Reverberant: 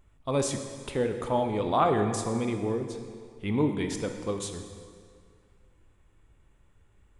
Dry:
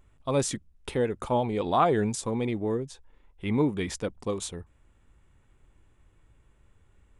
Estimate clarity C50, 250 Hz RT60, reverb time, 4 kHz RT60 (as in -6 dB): 7.0 dB, 2.0 s, 2.1 s, 1.7 s